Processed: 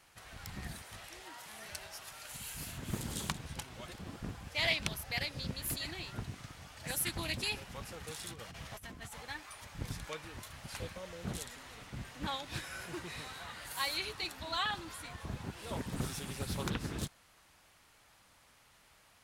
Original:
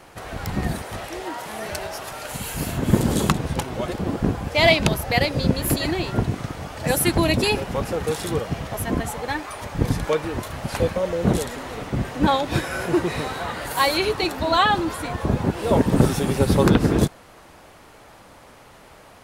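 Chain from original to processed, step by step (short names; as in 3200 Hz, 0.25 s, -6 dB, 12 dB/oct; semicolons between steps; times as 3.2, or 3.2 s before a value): passive tone stack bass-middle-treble 5-5-5; 8.29–9.23 negative-ratio compressor -42 dBFS, ratio -0.5; Doppler distortion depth 0.49 ms; gain -4 dB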